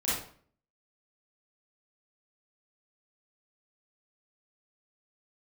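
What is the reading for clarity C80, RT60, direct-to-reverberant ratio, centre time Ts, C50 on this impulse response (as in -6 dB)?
5.5 dB, 0.50 s, -10.0 dB, 60 ms, -1.0 dB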